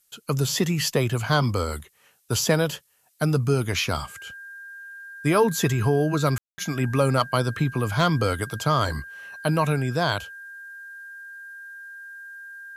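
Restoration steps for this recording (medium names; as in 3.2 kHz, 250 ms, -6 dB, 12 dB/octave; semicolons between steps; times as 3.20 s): clip repair -9.5 dBFS; band-stop 1.6 kHz, Q 30; room tone fill 6.38–6.58 s; expander -41 dBFS, range -21 dB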